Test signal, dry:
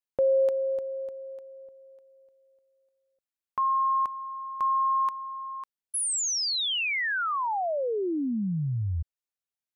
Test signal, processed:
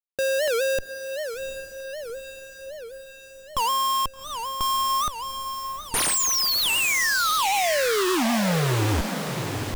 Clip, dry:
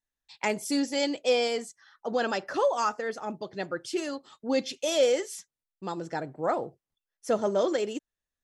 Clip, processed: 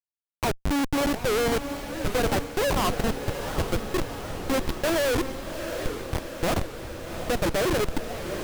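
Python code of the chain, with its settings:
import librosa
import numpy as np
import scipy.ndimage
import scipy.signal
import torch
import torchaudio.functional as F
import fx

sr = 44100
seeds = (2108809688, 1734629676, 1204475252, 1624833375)

y = fx.schmitt(x, sr, flips_db=-26.5)
y = fx.echo_diffused(y, sr, ms=757, feedback_pct=64, wet_db=-8.0)
y = fx.record_warp(y, sr, rpm=78.0, depth_cents=250.0)
y = F.gain(torch.from_numpy(y), 6.5).numpy()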